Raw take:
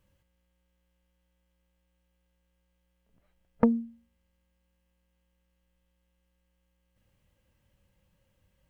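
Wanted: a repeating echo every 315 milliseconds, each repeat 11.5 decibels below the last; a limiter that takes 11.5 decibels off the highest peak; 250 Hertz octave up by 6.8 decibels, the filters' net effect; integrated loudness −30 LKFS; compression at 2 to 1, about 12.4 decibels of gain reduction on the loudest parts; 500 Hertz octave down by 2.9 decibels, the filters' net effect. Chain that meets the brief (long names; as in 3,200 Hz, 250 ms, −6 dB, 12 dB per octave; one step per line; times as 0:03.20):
parametric band 250 Hz +8 dB
parametric band 500 Hz −5 dB
downward compressor 2 to 1, threshold −35 dBFS
brickwall limiter −25.5 dBFS
repeating echo 315 ms, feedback 27%, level −11.5 dB
level +9 dB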